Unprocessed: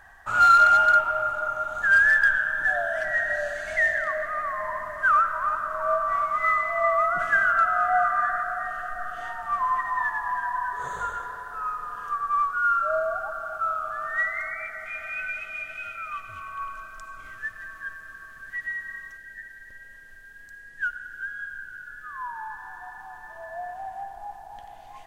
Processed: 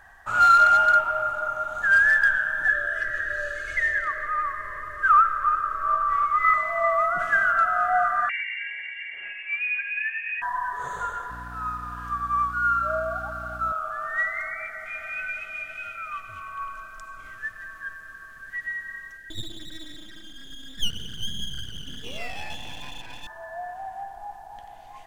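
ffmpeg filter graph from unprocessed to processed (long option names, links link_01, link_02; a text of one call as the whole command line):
ffmpeg -i in.wav -filter_complex "[0:a]asettb=1/sr,asplit=3[link_01][link_02][link_03];[link_01]atrim=end=2.684[link_04];[link_02]atrim=start=2.68:end=6.54,asetpts=PTS-STARTPTS,afade=type=in:duration=0.004:curve=qsin,afade=type=out:start_time=3.856:duration=0.004:curve=qsin,asuperstop=centerf=820:order=20:qfactor=2.2,highshelf=frequency=3600:gain=-6,aecho=1:1:2.4:0.86,atrim=end_sample=170226[link_05];[link_03]atrim=start=6.536[link_06];[link_04][link_05]acrossfade=duration=0.004:curve1=hsin:curve2=qsin[link_07];[link_07][link_06]acrossfade=duration=0.004:curve1=qsin:curve2=hsin,asettb=1/sr,asplit=3[link_08][link_09][link_10];[link_08]atrim=end=8.294[link_11];[link_09]atrim=start=8.29:end=10.42,asetpts=PTS-STARTPTS,afade=type=in:duration=0.004:curve=qsin,afade=type=out:start_time=2.126:duration=0.004:curve=qsin,highpass=frequency=1000:poles=1,lowpass=frequency=3000:width_type=q:width=0.5098,lowpass=frequency=3000:width_type=q:width=0.6013,lowpass=frequency=3000:width_type=q:width=0.9,lowpass=frequency=3000:width_type=q:width=2.563,afreqshift=-3500[link_12];[link_10]atrim=start=10.416[link_13];[link_11][link_12]acrossfade=duration=0.004:curve1=hsin:curve2=qsin[link_14];[link_14][link_13]acrossfade=duration=0.004:curve1=qsin:curve2=hsin,asettb=1/sr,asplit=3[link_15][link_16][link_17];[link_15]atrim=end=11.304[link_18];[link_16]atrim=start=11.3:end=13.72,asetpts=PTS-STARTPTS,afade=type=in:duration=0.004:curve=qsin,afade=type=out:start_time=2.416:duration=0.004:curve=qsin,highpass=580,aeval=exprs='val(0)+0.0112*(sin(2*PI*60*n/s)+sin(2*PI*2*60*n/s)/2+sin(2*PI*3*60*n/s)/3+sin(2*PI*4*60*n/s)/4+sin(2*PI*5*60*n/s)/5)':channel_layout=same,aeval=exprs='sgn(val(0))*max(abs(val(0))-0.00158,0)':channel_layout=same[link_19];[link_17]atrim=start=13.716[link_20];[link_18][link_19]acrossfade=duration=0.004:curve1=hsin:curve2=qsin[link_21];[link_21][link_20]acrossfade=duration=0.004:curve1=qsin:curve2=hsin,asettb=1/sr,asplit=3[link_22][link_23][link_24];[link_22]atrim=end=19.304[link_25];[link_23]atrim=start=19.3:end=23.27,asetpts=PTS-STARTPTS,afade=type=in:duration=0.004:curve=qsin,afade=type=out:start_time=3.966:duration=0.004:curve=qsin,lowpass=frequency=2100:width_type=q:width=4.7,aeval=exprs='abs(val(0))':channel_layout=same[link_26];[link_24]atrim=start=23.266[link_27];[link_25][link_26]acrossfade=duration=0.004:curve1=hsin:curve2=qsin[link_28];[link_28][link_27]acrossfade=duration=0.004:curve1=qsin:curve2=hsin" out.wav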